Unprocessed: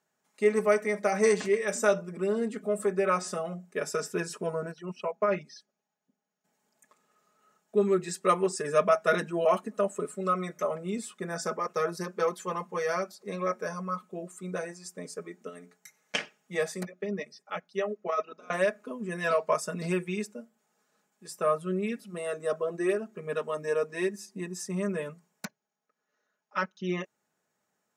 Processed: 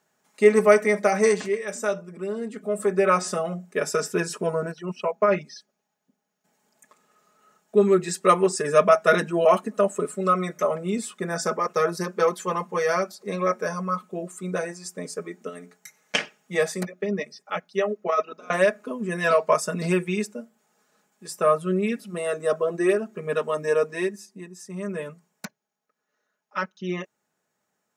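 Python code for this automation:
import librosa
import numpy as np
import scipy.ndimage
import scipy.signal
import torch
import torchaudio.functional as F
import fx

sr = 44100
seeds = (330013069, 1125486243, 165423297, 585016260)

y = fx.gain(x, sr, db=fx.line((0.94, 8.0), (1.66, -1.5), (2.43, -1.5), (3.0, 6.5), (23.86, 6.5), (24.56, -6.0), (25.0, 2.0)))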